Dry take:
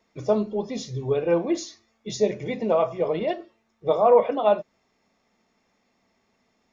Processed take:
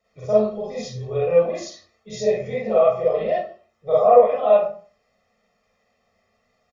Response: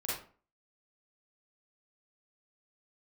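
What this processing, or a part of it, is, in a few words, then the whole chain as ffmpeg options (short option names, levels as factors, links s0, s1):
microphone above a desk: -filter_complex "[0:a]aecho=1:1:1.6:0.8[s0];[1:a]atrim=start_sample=2205[s1];[s0][s1]afir=irnorm=-1:irlink=0,volume=0.631"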